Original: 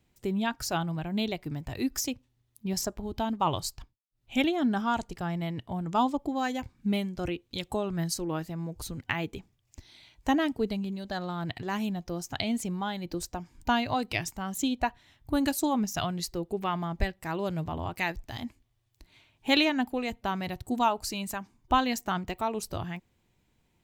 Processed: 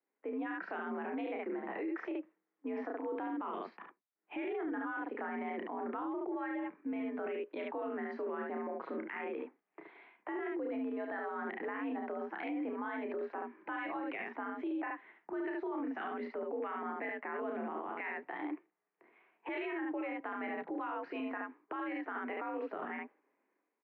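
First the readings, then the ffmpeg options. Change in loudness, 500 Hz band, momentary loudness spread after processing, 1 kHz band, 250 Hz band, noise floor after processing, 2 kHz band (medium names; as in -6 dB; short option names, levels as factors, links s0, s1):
-9.0 dB, -4.5 dB, 5 LU, -9.5 dB, -9.0 dB, under -85 dBFS, -6.0 dB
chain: -filter_complex "[0:a]agate=range=0.355:threshold=0.002:ratio=16:detection=peak,highpass=f=220:t=q:w=0.5412,highpass=f=220:t=q:w=1.307,lowpass=f=2000:t=q:w=0.5176,lowpass=f=2000:t=q:w=0.7071,lowpass=f=2000:t=q:w=1.932,afreqshift=64,acrossover=split=480|1400[s0][s1][s2];[s1]acompressor=threshold=0.00631:ratio=6[s3];[s0][s3][s2]amix=inputs=3:normalize=0,lowshelf=f=390:g=-7,dynaudnorm=f=120:g=7:m=3.76,aecho=1:1:31|72:0.531|0.562,alimiter=level_in=1.58:limit=0.0631:level=0:latency=1:release=59,volume=0.631,volume=0.668"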